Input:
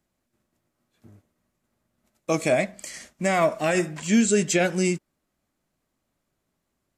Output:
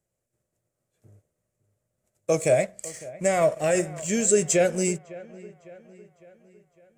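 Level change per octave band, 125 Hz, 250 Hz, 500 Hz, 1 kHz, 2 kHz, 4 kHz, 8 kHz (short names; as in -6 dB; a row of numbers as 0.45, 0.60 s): -2.0, -5.5, +2.0, -3.0, -4.5, -5.0, +3.5 dB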